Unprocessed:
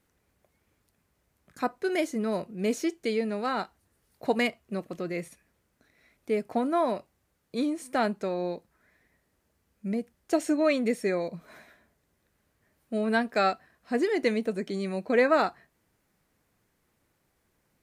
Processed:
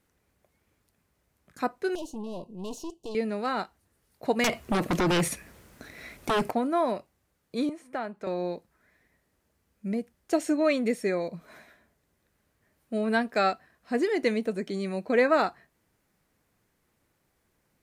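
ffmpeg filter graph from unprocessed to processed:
ffmpeg -i in.wav -filter_complex "[0:a]asettb=1/sr,asplit=3[link_01][link_02][link_03];[link_01]atrim=end=1.954[link_04];[link_02]atrim=start=1.95:end=3.15,asetpts=PTS-STARTPTS,afade=type=in:duration=0.004:curve=qsin,afade=type=out:start_time=1.196:duration=0.004:curve=qsin,highshelf=frequency=10000:gain=-8.5,aeval=exprs='(tanh(50.1*val(0)+0.6)-tanh(0.6))/50.1':channel_layout=same,asuperstop=centerf=1700:order=20:qfactor=1.1[link_05];[link_03]atrim=start=3.146[link_06];[link_04][link_05]acrossfade=duration=0.004:curve1=hsin:curve2=qsin[link_07];[link_07][link_06]acrossfade=duration=0.004:curve1=qsin:curve2=hsin,asettb=1/sr,asplit=3[link_08][link_09][link_10];[link_08]atrim=end=4.444[link_11];[link_09]atrim=start=4.44:end=6.51,asetpts=PTS-STARTPTS,afade=type=in:duration=0.004:curve=qsin,afade=type=out:start_time=2.066:duration=0.004:curve=qsin,acompressor=threshold=-31dB:ratio=6:attack=3.2:release=140:knee=1:detection=peak,aeval=exprs='0.0944*sin(PI/2*5.62*val(0)/0.0944)':channel_layout=same[link_12];[link_10]atrim=start=6.506[link_13];[link_11][link_12]acrossfade=duration=0.004:curve1=hsin:curve2=qsin[link_14];[link_14][link_13]acrossfade=duration=0.004:curve1=qsin:curve2=hsin,asettb=1/sr,asplit=3[link_15][link_16][link_17];[link_15]atrim=end=7.694[link_18];[link_16]atrim=start=7.69:end=8.27,asetpts=PTS-STARTPTS,afade=type=in:duration=0.004:curve=qsin,afade=type=out:start_time=0.576:duration=0.004:curve=qsin,acrossover=split=580|2800[link_19][link_20][link_21];[link_19]acompressor=threshold=-40dB:ratio=4[link_22];[link_20]acompressor=threshold=-31dB:ratio=4[link_23];[link_21]acompressor=threshold=-52dB:ratio=4[link_24];[link_22][link_23][link_24]amix=inputs=3:normalize=0,highshelf=frequency=2900:gain=-8.5[link_25];[link_17]atrim=start=8.266[link_26];[link_18][link_25]acrossfade=duration=0.004:curve1=hsin:curve2=qsin[link_27];[link_27][link_26]acrossfade=duration=0.004:curve1=qsin:curve2=hsin" out.wav

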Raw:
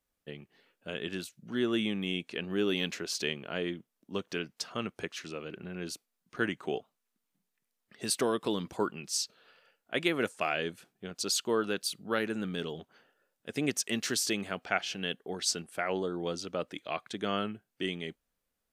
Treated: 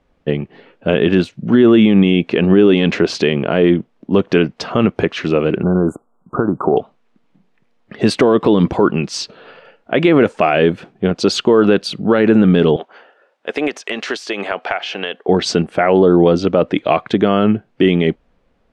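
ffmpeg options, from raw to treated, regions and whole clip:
ffmpeg -i in.wav -filter_complex "[0:a]asettb=1/sr,asplit=3[link_01][link_02][link_03];[link_01]atrim=end=5.634[link_04];[link_02]atrim=start=5.63:end=6.77,asetpts=PTS-STARTPTS,afade=type=in:duration=0.004:curve=qsin,afade=type=out:start_time=1.136:duration=0.004:curve=qsin,equalizer=frequency=1100:width=1.2:gain=5,acompressor=threshold=-34dB:ratio=6:attack=3.2:release=140:knee=1:detection=peak,asuperstop=centerf=3300:order=20:qfactor=0.57[link_05];[link_03]atrim=start=6.766[link_06];[link_04][link_05]acrossfade=duration=0.004:curve1=hsin:curve2=qsin[link_07];[link_07][link_06]acrossfade=duration=0.004:curve1=qsin:curve2=hsin,asettb=1/sr,asplit=3[link_08][link_09][link_10];[link_08]atrim=end=12.764[link_11];[link_09]atrim=start=12.76:end=15.29,asetpts=PTS-STARTPTS,afade=type=in:duration=0.004:curve=qsin,afade=type=out:start_time=2.526:duration=0.004:curve=qsin,highpass=600,acompressor=threshold=-36dB:ratio=10:attack=3.2:release=140:knee=1:detection=peak[link_12];[link_10]atrim=start=15.286[link_13];[link_11][link_12]acrossfade=duration=0.004:curve1=hsin:curve2=qsin[link_14];[link_14][link_13]acrossfade=duration=0.004:curve1=qsin:curve2=hsin,lowpass=1900,equalizer=frequency=1500:width=1.1:gain=-6,alimiter=level_in=28dB:limit=-1dB:release=50:level=0:latency=1,volume=-1dB" out.wav

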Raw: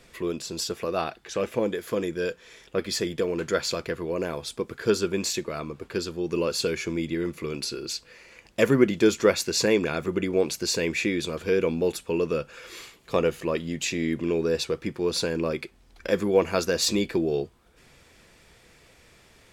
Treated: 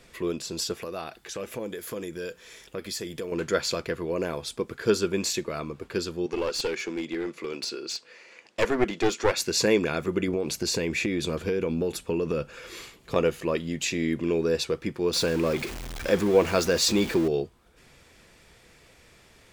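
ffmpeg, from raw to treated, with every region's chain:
ffmpeg -i in.wav -filter_complex "[0:a]asettb=1/sr,asplit=3[link_01][link_02][link_03];[link_01]atrim=end=0.824[link_04];[link_02]atrim=start=0.82:end=3.32,asetpts=PTS-STARTPTS,afade=type=in:duration=0.004:curve=qsin,afade=type=out:start_time=2.496:duration=0.004:curve=qsin,highshelf=frequency=7700:gain=11.5,acompressor=threshold=-36dB:ratio=2:attack=3.2:release=140:knee=1:detection=peak[link_05];[link_03]atrim=start=3.316[link_06];[link_04][link_05]acrossfade=duration=0.004:curve1=hsin:curve2=qsin[link_07];[link_07][link_06]acrossfade=duration=0.004:curve1=qsin:curve2=hsin,asettb=1/sr,asplit=3[link_08][link_09][link_10];[link_08]atrim=end=6.264[link_11];[link_09]atrim=start=6.26:end=9.37,asetpts=PTS-STARTPTS,afade=type=in:duration=0.004:curve=qsin,afade=type=out:start_time=3.106:duration=0.004:curve=qsin,highpass=300,lowpass=7500,aeval=exprs='clip(val(0),-1,0.0473)':channel_layout=same[link_12];[link_10]atrim=start=9.366[link_13];[link_11][link_12]acrossfade=duration=0.004:curve1=hsin:curve2=qsin[link_14];[link_14][link_13]acrossfade=duration=0.004:curve1=qsin:curve2=hsin,asettb=1/sr,asplit=3[link_15][link_16][link_17];[link_15]atrim=end=10.284[link_18];[link_16]atrim=start=10.28:end=13.16,asetpts=PTS-STARTPTS,afade=type=in:duration=0.004:curve=qsin,afade=type=out:start_time=2.876:duration=0.004:curve=qsin,lowshelf=frequency=450:gain=5,acompressor=threshold=-22dB:ratio=10:attack=3.2:release=140:knee=1:detection=peak[link_19];[link_17]atrim=start=13.156[link_20];[link_18][link_19]acrossfade=duration=0.004:curve1=hsin:curve2=qsin[link_21];[link_21][link_20]acrossfade=duration=0.004:curve1=qsin:curve2=hsin,asettb=1/sr,asplit=3[link_22][link_23][link_24];[link_22]atrim=end=15.134[link_25];[link_23]atrim=start=15.13:end=17.28,asetpts=PTS-STARTPTS,afade=type=in:duration=0.004:curve=qsin,afade=type=out:start_time=2.146:duration=0.004:curve=qsin,aeval=exprs='val(0)+0.5*0.0299*sgn(val(0))':channel_layout=same,equalizer=frequency=12000:width_type=o:width=0.77:gain=-2.5[link_26];[link_24]atrim=start=17.276[link_27];[link_25][link_26]acrossfade=duration=0.004:curve1=hsin:curve2=qsin[link_28];[link_28][link_27]acrossfade=duration=0.004:curve1=qsin:curve2=hsin" out.wav

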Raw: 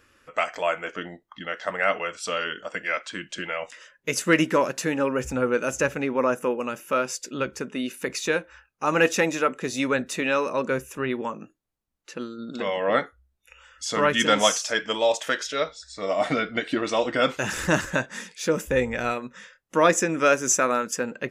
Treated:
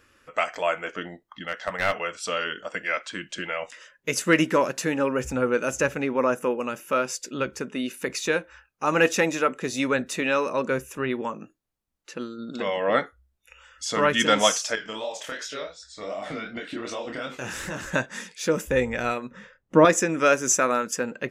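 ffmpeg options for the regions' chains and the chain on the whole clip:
ffmpeg -i in.wav -filter_complex "[0:a]asettb=1/sr,asplit=3[link_01][link_02][link_03];[link_01]atrim=end=1.444[link_04];[link_02]atrim=start=1.44:end=1.99,asetpts=PTS-STARTPTS,afade=type=in:duration=0.004:curve=qsin,afade=type=out:start_time=0.546:duration=0.004:curve=qsin,equalizer=frequency=370:width_type=o:width=0.43:gain=-9,aeval=exprs='clip(val(0),-1,0.0596)':channel_layout=same[link_05];[link_03]atrim=start=1.986[link_06];[link_04][link_05]acrossfade=duration=0.004:curve1=hsin:curve2=qsin[link_07];[link_07][link_06]acrossfade=duration=0.004:curve1=qsin:curve2=hsin,asettb=1/sr,asplit=3[link_08][link_09][link_10];[link_08]atrim=end=14.754[link_11];[link_09]atrim=start=14.75:end=17.86,asetpts=PTS-STARTPTS,afade=type=in:duration=0.004:curve=qsin,afade=type=out:start_time=3.106:duration=0.004:curve=qsin,asplit=2[link_12][link_13];[link_13]adelay=31,volume=-11.5dB[link_14];[link_12][link_14]amix=inputs=2:normalize=0,atrim=end_sample=137151,acompressor=threshold=-26dB:ratio=4:attack=3.2:release=140:knee=1:detection=peak,flanger=delay=20:depth=8:speed=2.7[link_15];[link_10]atrim=start=17.856[link_16];[link_11][link_15]acrossfade=duration=0.004:curve1=hsin:curve2=qsin[link_17];[link_17][link_16]acrossfade=duration=0.004:curve1=qsin:curve2=hsin,asettb=1/sr,asplit=3[link_18][link_19][link_20];[link_18]atrim=end=19.314[link_21];[link_19]atrim=start=19.31:end=19.85,asetpts=PTS-STARTPTS,afade=type=in:duration=0.004:curve=qsin,afade=type=out:start_time=0.536:duration=0.004:curve=qsin,lowpass=frequency=1800:poles=1,lowshelf=frequency=500:gain=11.5[link_22];[link_20]atrim=start=19.846[link_23];[link_21][link_22]acrossfade=duration=0.004:curve1=hsin:curve2=qsin[link_24];[link_24][link_23]acrossfade=duration=0.004:curve1=qsin:curve2=hsin" out.wav

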